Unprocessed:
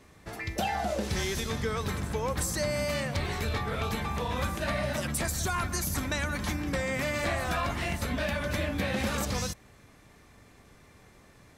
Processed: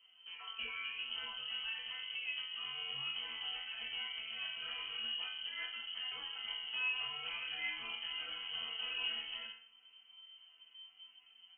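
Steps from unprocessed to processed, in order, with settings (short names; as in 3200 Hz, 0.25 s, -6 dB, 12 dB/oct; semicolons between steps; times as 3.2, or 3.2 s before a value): tilt -2.5 dB/oct; resonator bank F3 major, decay 0.5 s; inverted band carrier 3100 Hz; gain +4 dB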